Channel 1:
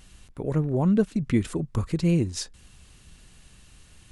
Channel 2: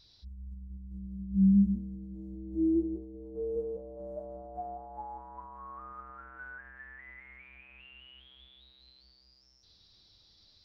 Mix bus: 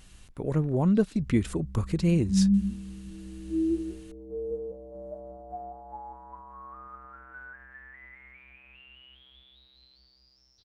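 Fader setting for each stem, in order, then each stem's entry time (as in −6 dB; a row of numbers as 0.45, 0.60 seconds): −1.5, +0.5 decibels; 0.00, 0.95 seconds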